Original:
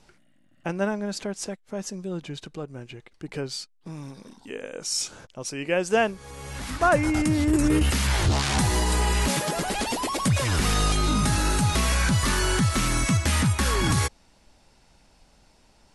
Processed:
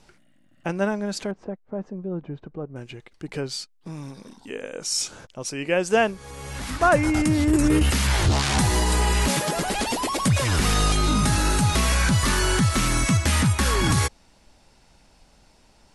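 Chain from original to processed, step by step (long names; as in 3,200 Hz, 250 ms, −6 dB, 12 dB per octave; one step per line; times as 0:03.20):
0:01.31–0:02.76: low-pass filter 1,000 Hz 12 dB per octave
level +2 dB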